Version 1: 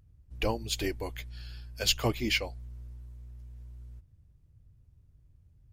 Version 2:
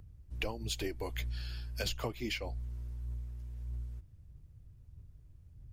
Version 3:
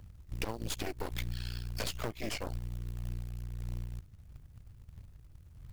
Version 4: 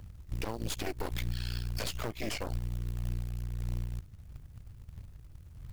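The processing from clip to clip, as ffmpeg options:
-filter_complex "[0:a]acrossover=split=240|1400[a][b][c];[c]alimiter=limit=-20dB:level=0:latency=1:release=371[d];[a][b][d]amix=inputs=3:normalize=0,acompressor=threshold=-37dB:ratio=8,flanger=delay=0:depth=3.1:regen=81:speed=1.6:shape=sinusoidal,volume=8dB"
-af "aeval=exprs='0.119*(cos(1*acos(clip(val(0)/0.119,-1,1)))-cos(1*PI/2))+0.0335*(cos(8*acos(clip(val(0)/0.119,-1,1)))-cos(8*PI/2))':c=same,acompressor=threshold=-38dB:ratio=2,acrusher=bits=5:mode=log:mix=0:aa=0.000001,volume=2dB"
-af "alimiter=level_in=3dB:limit=-24dB:level=0:latency=1:release=47,volume=-3dB,volume=4dB"

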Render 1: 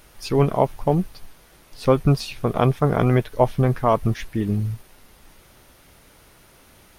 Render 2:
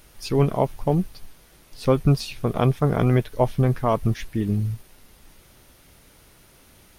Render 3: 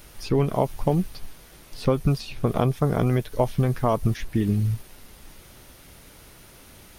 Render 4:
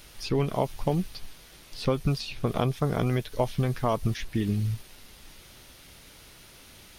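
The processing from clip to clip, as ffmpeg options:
-af "equalizer=f=1k:t=o:w=2.6:g=-4"
-filter_complex "[0:a]acrossover=split=1400|3900[a][b][c];[a]acompressor=threshold=-23dB:ratio=4[d];[b]acompressor=threshold=-46dB:ratio=4[e];[c]acompressor=threshold=-49dB:ratio=4[f];[d][e][f]amix=inputs=3:normalize=0,volume=4.5dB"
-af "equalizer=f=3.8k:t=o:w=2:g=7,volume=-4.5dB"

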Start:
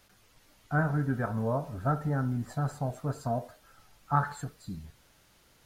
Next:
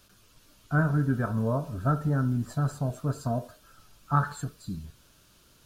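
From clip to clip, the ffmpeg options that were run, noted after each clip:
-af "equalizer=f=500:t=o:w=0.33:g=-4,equalizer=f=800:t=o:w=0.33:g=-11,equalizer=f=2k:t=o:w=0.33:g=-11,volume=4dB"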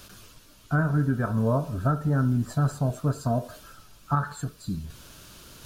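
-af "alimiter=limit=-18.5dB:level=0:latency=1:release=476,areverse,acompressor=mode=upward:threshold=-43dB:ratio=2.5,areverse,volume=4.5dB"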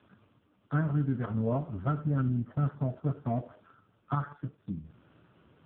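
-af "adynamicsmooth=sensitivity=7:basefreq=1.5k,volume=-4.5dB" -ar 8000 -c:a libopencore_amrnb -b:a 4750

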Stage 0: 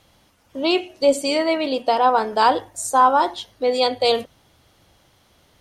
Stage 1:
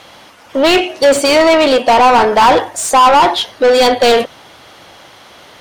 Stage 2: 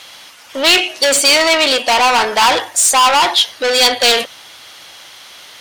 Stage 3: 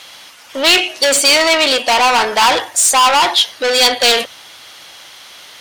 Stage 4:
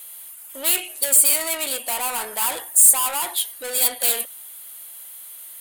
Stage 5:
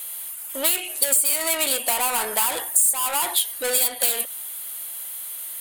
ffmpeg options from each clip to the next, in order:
-filter_complex "[0:a]asplit=2[a][b];[b]highpass=f=720:p=1,volume=27dB,asoftclip=type=tanh:threshold=-3.5dB[c];[a][c]amix=inputs=2:normalize=0,lowpass=f=2.7k:p=1,volume=-6dB,volume=2.5dB"
-af "tiltshelf=f=1.4k:g=-9,volume=-1dB"
-af "bandreject=f=50:t=h:w=6,bandreject=f=100:t=h:w=6"
-af "aexciter=amount=14.8:drive=9:freq=8.5k,volume=-16.5dB"
-af "acompressor=threshold=-22dB:ratio=8,volume=6dB"

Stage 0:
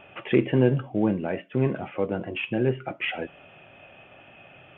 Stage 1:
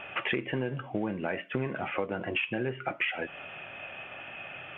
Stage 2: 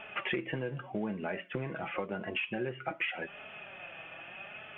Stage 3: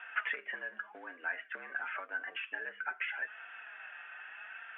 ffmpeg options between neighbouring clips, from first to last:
-af "equalizer=f=1.8k:t=o:w=2.4:g=10.5,acompressor=threshold=-27dB:ratio=16"
-af "flanger=delay=4.6:depth=1.6:regen=36:speed=0.86:shape=sinusoidal"
-af "bandpass=f=1.5k:t=q:w=5.4:csg=0,afreqshift=75,volume=9dB"

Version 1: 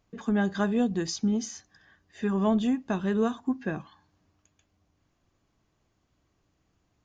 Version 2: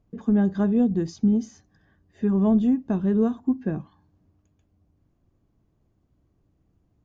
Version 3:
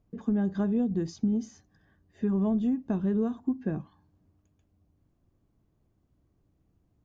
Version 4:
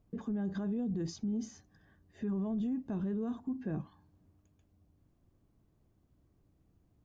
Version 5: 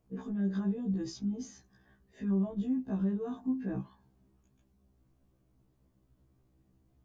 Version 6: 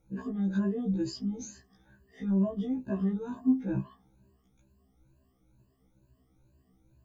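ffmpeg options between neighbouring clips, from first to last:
-af "tiltshelf=f=750:g=9.5,volume=-2dB"
-af "acompressor=threshold=-20dB:ratio=6,volume=-3dB"
-af "alimiter=level_in=5dB:limit=-24dB:level=0:latency=1:release=31,volume=-5dB"
-af "afftfilt=real='re*1.73*eq(mod(b,3),0)':imag='im*1.73*eq(mod(b,3),0)':win_size=2048:overlap=0.75,volume=3.5dB"
-af "afftfilt=real='re*pow(10,19/40*sin(2*PI*(1.4*log(max(b,1)*sr/1024/100)/log(2)-(2.2)*(pts-256)/sr)))':imag='im*pow(10,19/40*sin(2*PI*(1.4*log(max(b,1)*sr/1024/100)/log(2)-(2.2)*(pts-256)/sr)))':win_size=1024:overlap=0.75"

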